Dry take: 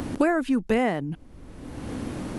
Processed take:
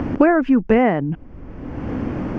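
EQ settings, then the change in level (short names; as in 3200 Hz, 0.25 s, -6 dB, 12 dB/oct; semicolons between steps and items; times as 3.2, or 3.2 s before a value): air absorption 220 m; bell 3900 Hz -15 dB 0.45 oct; bell 9400 Hz -13.5 dB 0.43 oct; +8.5 dB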